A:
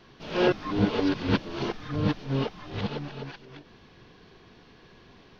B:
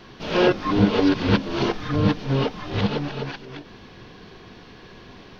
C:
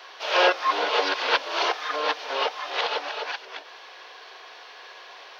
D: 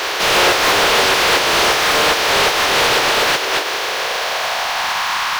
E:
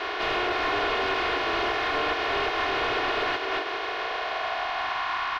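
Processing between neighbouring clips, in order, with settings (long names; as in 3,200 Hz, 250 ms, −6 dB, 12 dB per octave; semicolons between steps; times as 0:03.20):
downward compressor 1.5 to 1, threshold −29 dBFS, peak gain reduction 4.5 dB; on a send at −18 dB: convolution reverb RT60 0.30 s, pre-delay 3 ms; on the sum: level +9 dB
inverse Chebyshev high-pass filter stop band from 170 Hz, stop band 60 dB; level +4.5 dB
compressing power law on the bin magnitudes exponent 0.33; high-pass filter sweep 370 Hz → 990 Hz, 0:03.70–0:05.17; mid-hump overdrive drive 35 dB, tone 3,000 Hz, clips at −5 dBFS
comb filter 2.8 ms, depth 66%; brickwall limiter −8 dBFS, peak gain reduction 5.5 dB; high-frequency loss of the air 310 metres; level −8.5 dB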